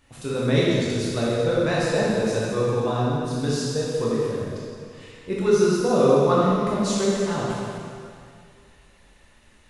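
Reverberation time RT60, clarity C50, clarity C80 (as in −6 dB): 2.3 s, −3.5 dB, −1.0 dB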